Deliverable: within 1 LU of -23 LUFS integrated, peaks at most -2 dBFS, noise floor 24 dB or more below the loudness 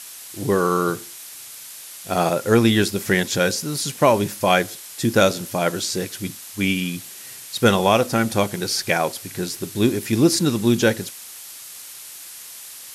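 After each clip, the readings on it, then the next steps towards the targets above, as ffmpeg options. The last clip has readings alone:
noise floor -39 dBFS; noise floor target -45 dBFS; loudness -20.5 LUFS; peak level -3.0 dBFS; loudness target -23.0 LUFS
-> -af "afftdn=nr=6:nf=-39"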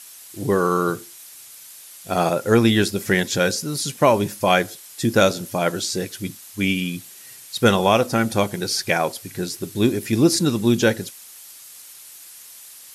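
noise floor -43 dBFS; noise floor target -45 dBFS
-> -af "afftdn=nr=6:nf=-43"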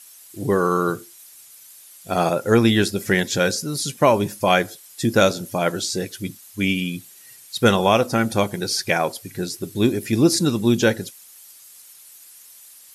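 noise floor -47 dBFS; loudness -20.5 LUFS; peak level -3.0 dBFS; loudness target -23.0 LUFS
-> -af "volume=0.75"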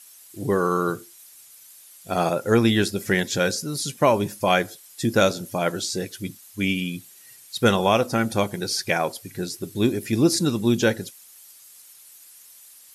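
loudness -23.0 LUFS; peak level -5.5 dBFS; noise floor -49 dBFS

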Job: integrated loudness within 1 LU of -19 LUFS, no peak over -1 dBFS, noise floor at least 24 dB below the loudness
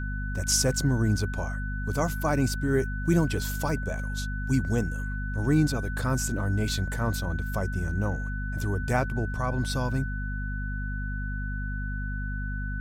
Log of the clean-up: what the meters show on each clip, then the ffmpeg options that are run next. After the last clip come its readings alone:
hum 50 Hz; highest harmonic 250 Hz; hum level -29 dBFS; steady tone 1.5 kHz; tone level -37 dBFS; loudness -28.5 LUFS; peak level -11.5 dBFS; loudness target -19.0 LUFS
-> -af "bandreject=f=50:t=h:w=4,bandreject=f=100:t=h:w=4,bandreject=f=150:t=h:w=4,bandreject=f=200:t=h:w=4,bandreject=f=250:t=h:w=4"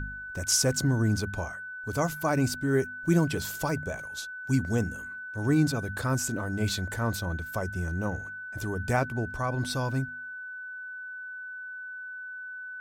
hum not found; steady tone 1.5 kHz; tone level -37 dBFS
-> -af "bandreject=f=1500:w=30"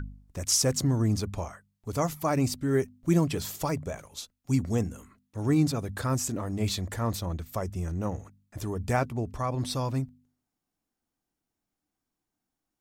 steady tone not found; loudness -29.0 LUFS; peak level -12.5 dBFS; loudness target -19.0 LUFS
-> -af "volume=3.16"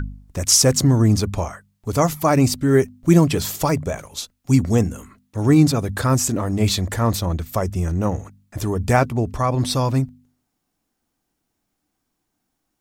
loudness -19.0 LUFS; peak level -2.5 dBFS; noise floor -76 dBFS

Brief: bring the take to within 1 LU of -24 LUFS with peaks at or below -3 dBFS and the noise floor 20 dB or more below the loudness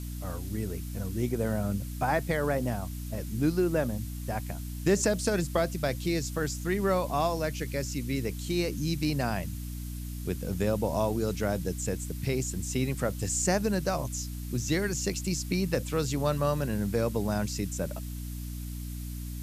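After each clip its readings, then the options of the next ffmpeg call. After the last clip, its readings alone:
hum 60 Hz; highest harmonic 300 Hz; hum level -34 dBFS; noise floor -37 dBFS; noise floor target -51 dBFS; loudness -30.5 LUFS; peak level -14.0 dBFS; loudness target -24.0 LUFS
-> -af "bandreject=f=60:t=h:w=6,bandreject=f=120:t=h:w=6,bandreject=f=180:t=h:w=6,bandreject=f=240:t=h:w=6,bandreject=f=300:t=h:w=6"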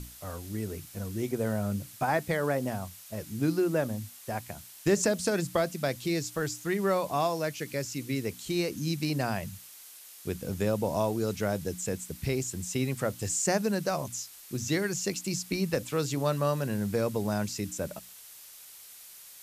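hum not found; noise floor -50 dBFS; noise floor target -51 dBFS
-> -af "afftdn=nr=6:nf=-50"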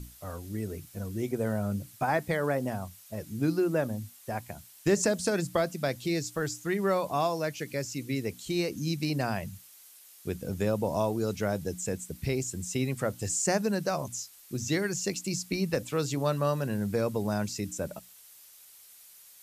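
noise floor -54 dBFS; loudness -31.0 LUFS; peak level -14.0 dBFS; loudness target -24.0 LUFS
-> -af "volume=2.24"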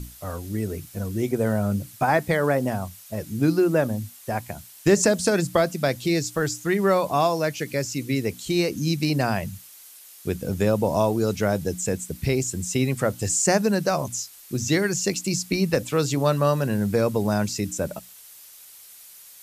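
loudness -24.0 LUFS; peak level -7.0 dBFS; noise floor -47 dBFS

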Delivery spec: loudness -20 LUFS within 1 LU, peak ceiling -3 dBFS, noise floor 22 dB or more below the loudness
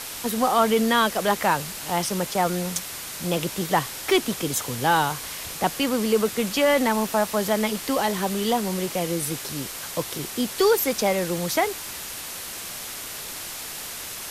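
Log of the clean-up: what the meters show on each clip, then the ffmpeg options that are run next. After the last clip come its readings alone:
noise floor -35 dBFS; noise floor target -47 dBFS; loudness -24.5 LUFS; peak level -7.5 dBFS; loudness target -20.0 LUFS
-> -af "afftdn=nr=12:nf=-35"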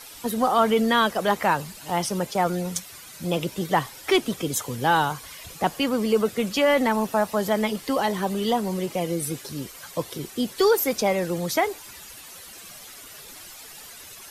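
noise floor -44 dBFS; noise floor target -46 dBFS
-> -af "afftdn=nr=6:nf=-44"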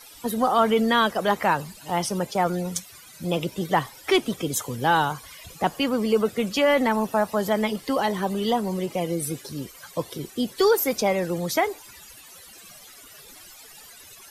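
noise floor -47 dBFS; loudness -24.5 LUFS; peak level -8.0 dBFS; loudness target -20.0 LUFS
-> -af "volume=1.68"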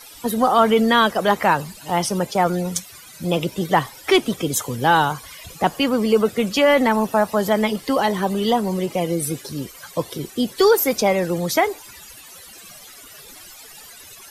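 loudness -20.0 LUFS; peak level -3.5 dBFS; noise floor -43 dBFS

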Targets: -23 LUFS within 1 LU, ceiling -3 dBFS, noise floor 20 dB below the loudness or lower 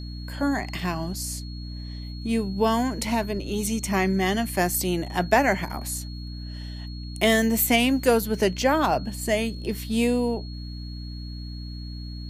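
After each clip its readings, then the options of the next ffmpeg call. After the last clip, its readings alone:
hum 60 Hz; highest harmonic 300 Hz; hum level -33 dBFS; steady tone 4.3 kHz; tone level -44 dBFS; loudness -24.5 LUFS; peak level -5.0 dBFS; loudness target -23.0 LUFS
-> -af "bandreject=f=60:t=h:w=6,bandreject=f=120:t=h:w=6,bandreject=f=180:t=h:w=6,bandreject=f=240:t=h:w=6,bandreject=f=300:t=h:w=6"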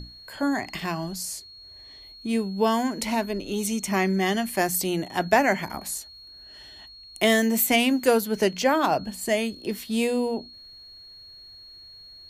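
hum not found; steady tone 4.3 kHz; tone level -44 dBFS
-> -af "bandreject=f=4300:w=30"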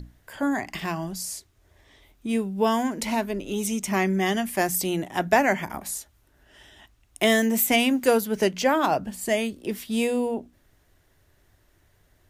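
steady tone not found; loudness -24.5 LUFS; peak level -5.0 dBFS; loudness target -23.0 LUFS
-> -af "volume=1.19"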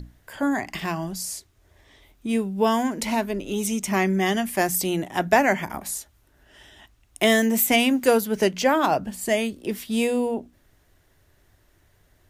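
loudness -23.0 LUFS; peak level -3.5 dBFS; noise floor -62 dBFS

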